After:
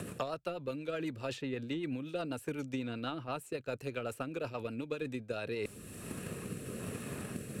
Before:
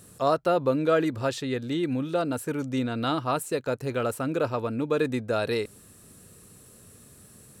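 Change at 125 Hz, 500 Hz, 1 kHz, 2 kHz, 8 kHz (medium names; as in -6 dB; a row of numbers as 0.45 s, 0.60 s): -9.0 dB, -12.0 dB, -13.5 dB, -8.5 dB, -7.0 dB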